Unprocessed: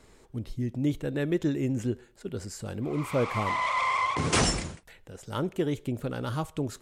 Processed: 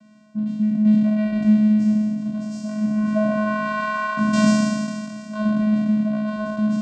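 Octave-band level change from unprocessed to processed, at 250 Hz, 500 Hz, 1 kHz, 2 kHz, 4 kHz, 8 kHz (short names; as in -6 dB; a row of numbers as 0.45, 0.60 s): +14.5, +4.0, +2.0, +5.5, -1.5, -2.5 dB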